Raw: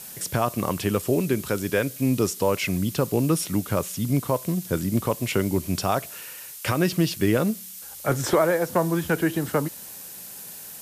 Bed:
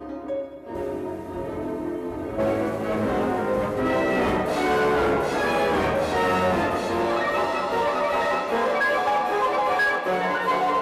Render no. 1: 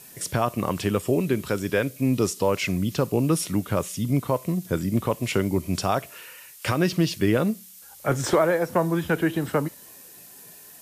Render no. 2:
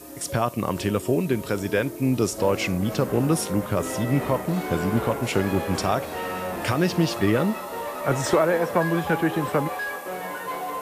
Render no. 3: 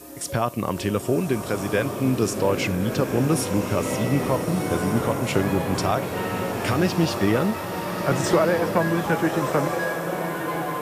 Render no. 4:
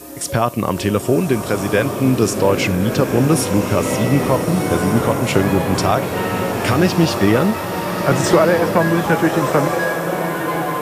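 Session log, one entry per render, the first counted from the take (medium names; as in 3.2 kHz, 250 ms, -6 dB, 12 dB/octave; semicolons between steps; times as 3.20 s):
noise print and reduce 7 dB
add bed -8.5 dB
swelling reverb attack 1420 ms, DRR 5.5 dB
trim +6.5 dB; peak limiter -2 dBFS, peak gain reduction 1 dB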